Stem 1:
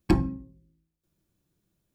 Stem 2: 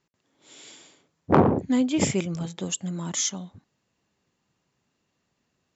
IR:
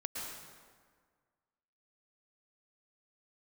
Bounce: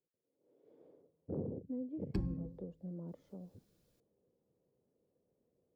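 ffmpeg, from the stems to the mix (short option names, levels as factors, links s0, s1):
-filter_complex "[0:a]acompressor=threshold=0.0447:ratio=1.5,adelay=2050,volume=1.06[s0];[1:a]acompressor=threshold=0.00447:ratio=1.5,lowpass=f=490:t=q:w=4.9,volume=0.422,afade=t=in:st=0.61:d=0.3:silence=0.237137,asplit=2[s1][s2];[s2]apad=whole_len=176399[s3];[s0][s3]sidechaincompress=threshold=0.0126:ratio=8:attack=10:release=929[s4];[s4][s1]amix=inputs=2:normalize=0,equalizer=f=4700:t=o:w=0.59:g=6,acrossover=split=240[s5][s6];[s6]acompressor=threshold=0.00251:ratio=2.5[s7];[s5][s7]amix=inputs=2:normalize=0"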